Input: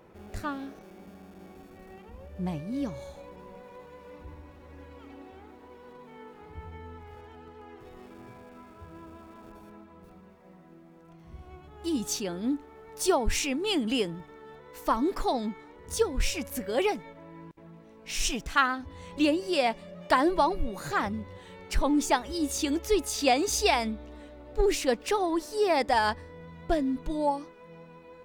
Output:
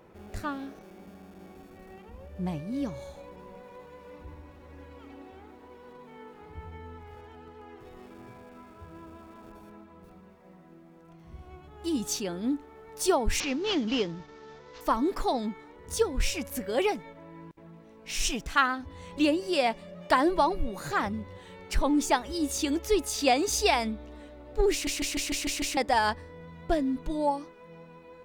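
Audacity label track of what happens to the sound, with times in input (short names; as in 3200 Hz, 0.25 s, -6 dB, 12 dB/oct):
13.400000	14.810000	CVSD 32 kbps
24.720000	24.720000	stutter in place 0.15 s, 7 plays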